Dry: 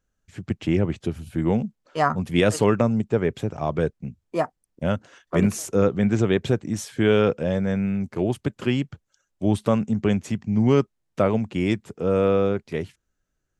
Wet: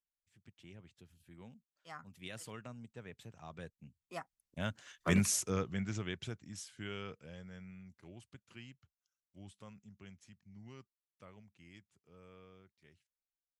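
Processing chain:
source passing by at 0:05.11, 18 m/s, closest 5.3 metres
guitar amp tone stack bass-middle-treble 5-5-5
level +7.5 dB

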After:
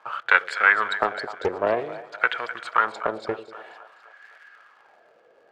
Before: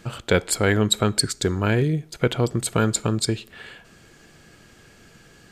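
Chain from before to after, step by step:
three-way crossover with the lows and the highs turned down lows −16 dB, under 450 Hz, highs −16 dB, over 5,600 Hz
in parallel at −4 dB: bit reduction 7 bits
on the sum: surface crackle 86 per second −35 dBFS
LFO wah 0.52 Hz 530–1,700 Hz, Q 3.5
on a send: echo with a time of its own for lows and highs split 640 Hz, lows 95 ms, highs 255 ms, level −13 dB
on the sum: highs frequency-modulated by the lows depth 0.28 ms
level +8 dB

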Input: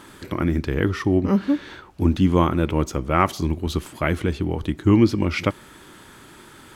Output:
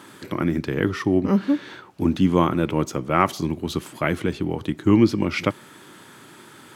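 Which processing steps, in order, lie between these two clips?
high-pass filter 110 Hz 24 dB per octave

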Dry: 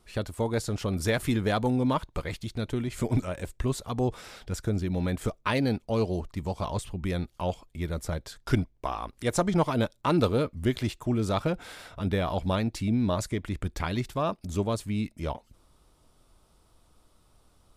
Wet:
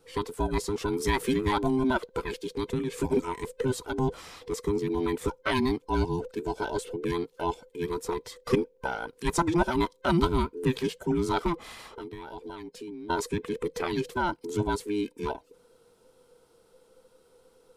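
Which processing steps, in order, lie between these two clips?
frequency inversion band by band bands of 500 Hz
0:11.54–0:13.10: downward compressor 20 to 1, threshold −37 dBFS, peak gain reduction 16 dB

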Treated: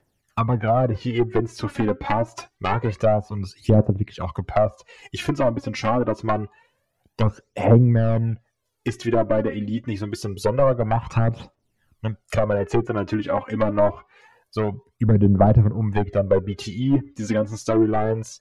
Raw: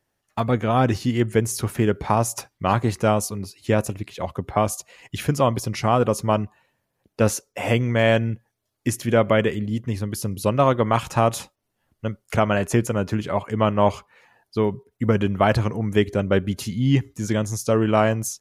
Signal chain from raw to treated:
wave folding −11.5 dBFS
phase shifter 0.26 Hz, delay 3.9 ms, feedback 66%
treble cut that deepens with the level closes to 830 Hz, closed at −15 dBFS

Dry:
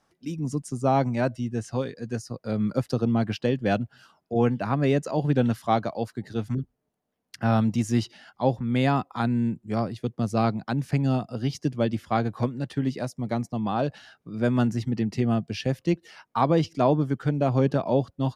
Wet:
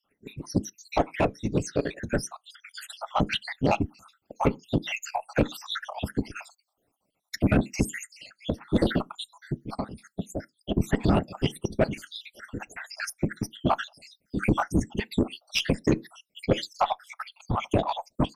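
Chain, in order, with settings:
time-frequency cells dropped at random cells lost 75%
random phases in short frames
tilt shelving filter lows −5 dB, about 1,100 Hz
0:09.66–0:10.59: downward compressor 6 to 1, threshold −40 dBFS, peak gain reduction 15 dB
harmonic generator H 2 −16 dB, 4 −37 dB, 5 −16 dB, 7 −16 dB, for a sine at −12 dBFS
parametric band 4,800 Hz −2.5 dB 0.33 octaves
on a send at −18.5 dB: convolution reverb RT60 0.15 s, pre-delay 3 ms
on the sum: automatic gain control gain up to 13 dB
brickwall limiter −11 dBFS, peak gain reduction 9 dB
wow of a warped record 78 rpm, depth 100 cents

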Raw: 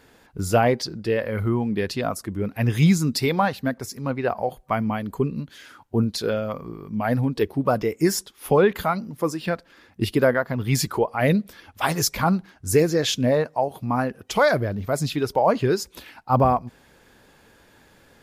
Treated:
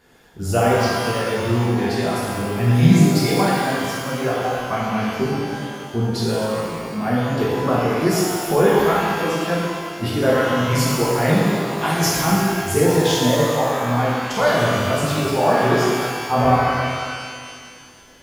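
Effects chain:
reverb with rising layers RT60 2 s, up +12 semitones, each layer −8 dB, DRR −7 dB
level −5 dB

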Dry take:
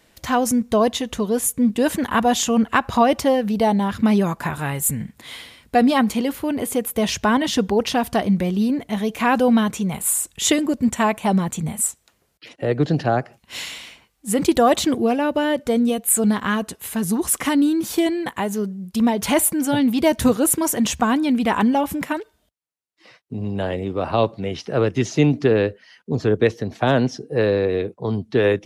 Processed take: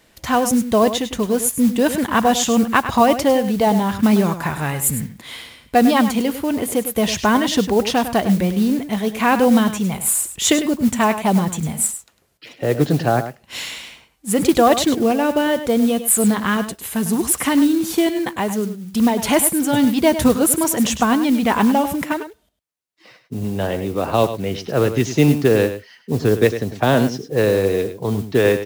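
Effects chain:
single-tap delay 102 ms −11 dB
noise that follows the level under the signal 22 dB
level +2 dB

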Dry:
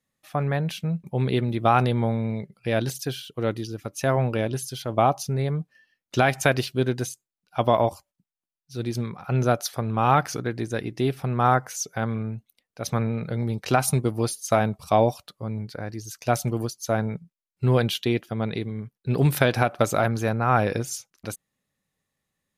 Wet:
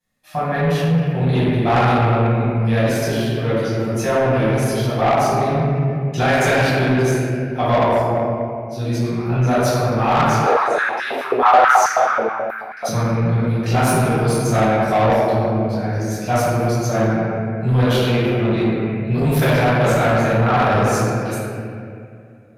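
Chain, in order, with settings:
convolution reverb RT60 2.2 s, pre-delay 6 ms, DRR −13 dB
soft clipping −5.5 dBFS, distortion −12 dB
0:10.46–0:12.89: high-pass on a step sequencer 9.3 Hz 480–1,700 Hz
level −5.5 dB

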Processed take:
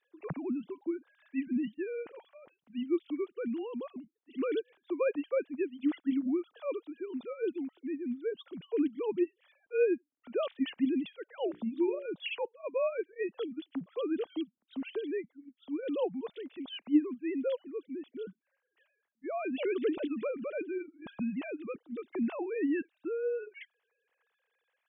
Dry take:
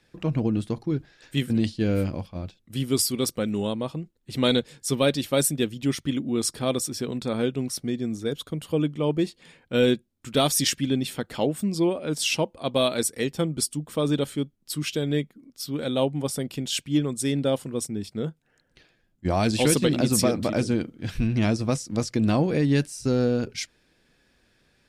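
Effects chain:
three sine waves on the formant tracks
0:11.49–0:12.06: mains-hum notches 60/120/180/240/300/360/420/480 Hz
level −9 dB

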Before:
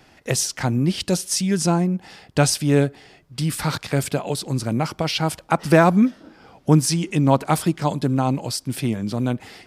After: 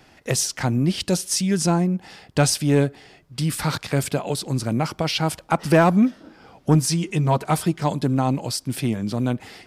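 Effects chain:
0:06.74–0:07.83: notch comb filter 280 Hz
soft clipping −6 dBFS, distortion −22 dB

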